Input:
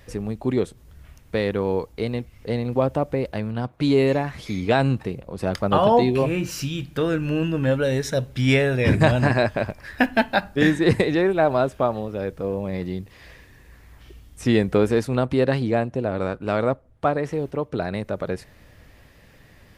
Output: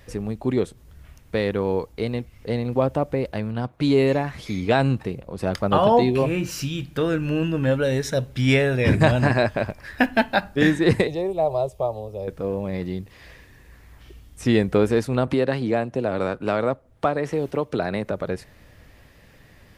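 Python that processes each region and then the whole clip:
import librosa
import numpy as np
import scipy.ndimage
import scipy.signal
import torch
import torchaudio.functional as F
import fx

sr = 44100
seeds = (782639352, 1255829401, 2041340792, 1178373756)

y = fx.chain(x, sr, fx.peak_eq(hz=2300.0, db=-7.0, octaves=2.5),
    fx.fixed_phaser(hz=630.0, stages=4), at=(11.07, 12.28))
y = fx.chain(y, sr, fx.low_shelf(hz=140.0, db=-6.5),
    fx.band_squash(depth_pct=70), at=(15.27, 18.11))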